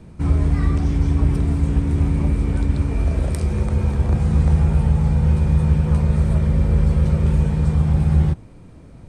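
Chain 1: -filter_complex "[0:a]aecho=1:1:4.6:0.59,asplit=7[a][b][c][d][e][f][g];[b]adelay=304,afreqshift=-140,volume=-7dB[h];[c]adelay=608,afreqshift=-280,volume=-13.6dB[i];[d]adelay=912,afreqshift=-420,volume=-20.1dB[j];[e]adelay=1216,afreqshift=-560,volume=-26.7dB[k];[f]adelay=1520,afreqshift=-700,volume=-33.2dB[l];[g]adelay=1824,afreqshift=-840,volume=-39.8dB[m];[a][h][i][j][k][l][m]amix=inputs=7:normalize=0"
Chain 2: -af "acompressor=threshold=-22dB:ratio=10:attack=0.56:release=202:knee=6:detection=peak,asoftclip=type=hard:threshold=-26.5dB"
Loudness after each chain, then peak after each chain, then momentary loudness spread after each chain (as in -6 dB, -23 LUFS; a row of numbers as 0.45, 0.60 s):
-18.5, -31.5 LUFS; -3.0, -26.5 dBFS; 4, 1 LU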